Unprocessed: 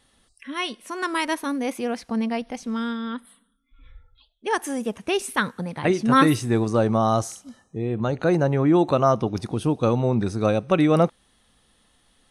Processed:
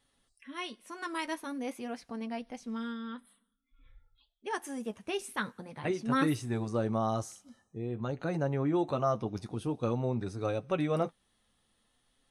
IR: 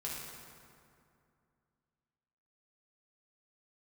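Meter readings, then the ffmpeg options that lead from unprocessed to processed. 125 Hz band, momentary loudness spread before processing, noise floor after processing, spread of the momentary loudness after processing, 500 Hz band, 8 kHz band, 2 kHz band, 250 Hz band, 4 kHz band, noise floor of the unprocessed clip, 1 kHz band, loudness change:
-10.5 dB, 11 LU, -75 dBFS, 11 LU, -11.0 dB, -11.5 dB, -11.0 dB, -11.5 dB, -11.5 dB, -64 dBFS, -11.5 dB, -11.0 dB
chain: -af "flanger=delay=7:depth=2.5:regen=-41:speed=0.48:shape=sinusoidal,volume=-7.5dB"

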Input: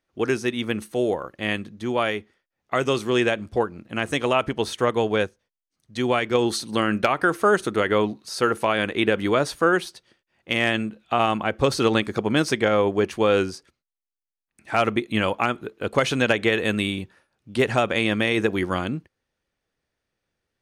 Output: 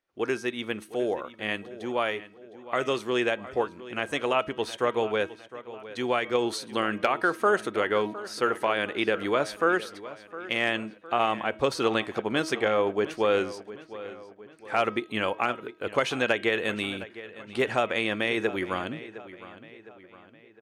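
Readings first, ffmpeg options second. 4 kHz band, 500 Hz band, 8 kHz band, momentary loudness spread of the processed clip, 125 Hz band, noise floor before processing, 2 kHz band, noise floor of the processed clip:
-5.0 dB, -4.0 dB, -7.0 dB, 15 LU, -11.5 dB, under -85 dBFS, -3.5 dB, -53 dBFS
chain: -filter_complex "[0:a]bass=f=250:g=-9,treble=f=4k:g=-4,bandreject=f=318.9:t=h:w=4,bandreject=f=637.8:t=h:w=4,bandreject=f=956.7:t=h:w=4,bandreject=f=1.2756k:t=h:w=4,bandreject=f=1.5945k:t=h:w=4,bandreject=f=1.9134k:t=h:w=4,bandreject=f=2.2323k:t=h:w=4,bandreject=f=2.5512k:t=h:w=4,bandreject=f=2.8701k:t=h:w=4,bandreject=f=3.189k:t=h:w=4,bandreject=f=3.5079k:t=h:w=4,bandreject=f=3.8268k:t=h:w=4,asplit=2[a][b];[b]adelay=710,lowpass=f=4.6k:p=1,volume=-15.5dB,asplit=2[c][d];[d]adelay=710,lowpass=f=4.6k:p=1,volume=0.49,asplit=2[e][f];[f]adelay=710,lowpass=f=4.6k:p=1,volume=0.49,asplit=2[g][h];[h]adelay=710,lowpass=f=4.6k:p=1,volume=0.49[i];[c][e][g][i]amix=inputs=4:normalize=0[j];[a][j]amix=inputs=2:normalize=0,volume=-3.5dB"

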